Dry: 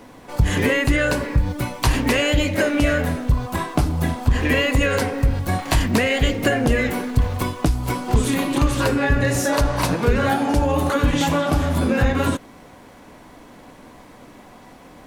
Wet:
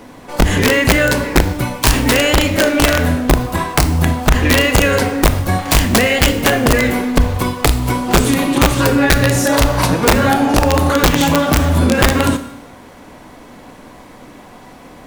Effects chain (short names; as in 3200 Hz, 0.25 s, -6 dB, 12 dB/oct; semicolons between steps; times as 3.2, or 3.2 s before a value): wrapped overs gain 9.5 dB; Schroeder reverb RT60 0.83 s, combs from 25 ms, DRR 10.5 dB; gain +5.5 dB